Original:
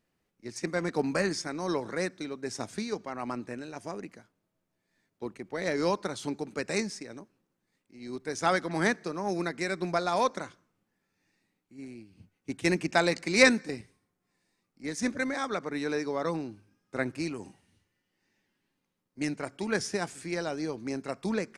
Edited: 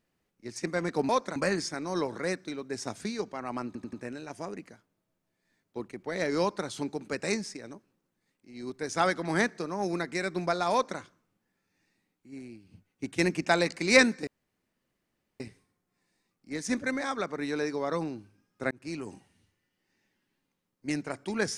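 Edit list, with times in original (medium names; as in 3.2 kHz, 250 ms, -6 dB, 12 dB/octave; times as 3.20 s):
3.39 s: stutter 0.09 s, 4 plays
10.18–10.45 s: copy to 1.09 s
13.73 s: insert room tone 1.13 s
17.04–17.36 s: fade in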